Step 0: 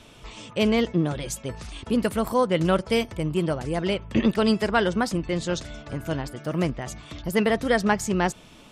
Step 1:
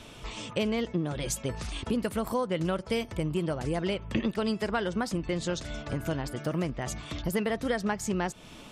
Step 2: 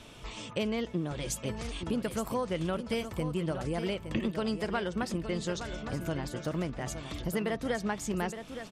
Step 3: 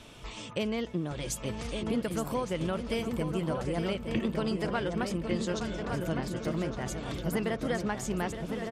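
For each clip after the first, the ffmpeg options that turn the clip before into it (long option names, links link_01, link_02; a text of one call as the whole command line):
ffmpeg -i in.wav -af "acompressor=threshold=-29dB:ratio=4,volume=2dB" out.wav
ffmpeg -i in.wav -af "aecho=1:1:866|1732|2598:0.335|0.067|0.0134,volume=-3dB" out.wav
ffmpeg -i in.wav -filter_complex "[0:a]asplit=2[link_01][link_02];[link_02]adelay=1161,lowpass=frequency=2100:poles=1,volume=-5dB,asplit=2[link_03][link_04];[link_04]adelay=1161,lowpass=frequency=2100:poles=1,volume=0.48,asplit=2[link_05][link_06];[link_06]adelay=1161,lowpass=frequency=2100:poles=1,volume=0.48,asplit=2[link_07][link_08];[link_08]adelay=1161,lowpass=frequency=2100:poles=1,volume=0.48,asplit=2[link_09][link_10];[link_10]adelay=1161,lowpass=frequency=2100:poles=1,volume=0.48,asplit=2[link_11][link_12];[link_12]adelay=1161,lowpass=frequency=2100:poles=1,volume=0.48[link_13];[link_01][link_03][link_05][link_07][link_09][link_11][link_13]amix=inputs=7:normalize=0" out.wav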